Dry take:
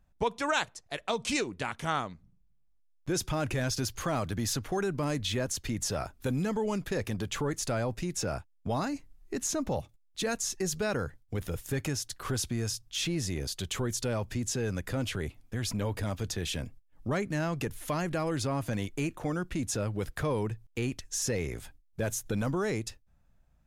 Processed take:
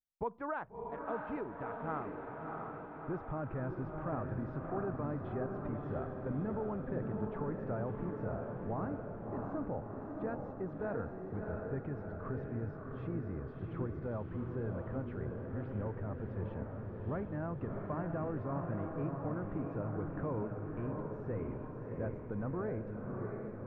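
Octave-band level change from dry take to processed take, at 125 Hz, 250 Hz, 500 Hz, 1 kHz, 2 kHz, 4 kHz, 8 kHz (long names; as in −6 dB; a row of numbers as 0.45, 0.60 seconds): −5.0 dB, −5.5 dB, −5.5 dB, −6.0 dB, −12.5 dB, below −35 dB, below −40 dB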